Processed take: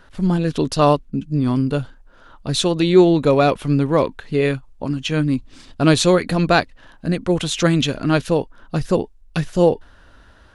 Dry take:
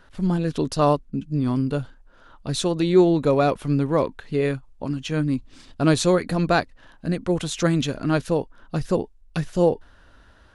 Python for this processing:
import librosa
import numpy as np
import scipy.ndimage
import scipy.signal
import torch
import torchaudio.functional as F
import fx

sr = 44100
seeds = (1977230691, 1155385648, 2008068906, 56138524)

y = fx.dynamic_eq(x, sr, hz=3000.0, q=1.3, threshold_db=-42.0, ratio=4.0, max_db=5)
y = y * librosa.db_to_amplitude(4.0)